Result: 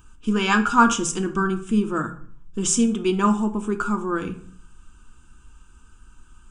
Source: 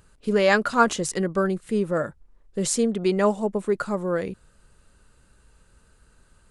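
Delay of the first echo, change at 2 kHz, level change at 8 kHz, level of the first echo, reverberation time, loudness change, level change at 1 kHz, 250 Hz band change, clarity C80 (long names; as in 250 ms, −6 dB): no echo audible, +1.5 dB, +4.5 dB, no echo audible, 0.55 s, +2.0 dB, +4.0 dB, +4.5 dB, 17.5 dB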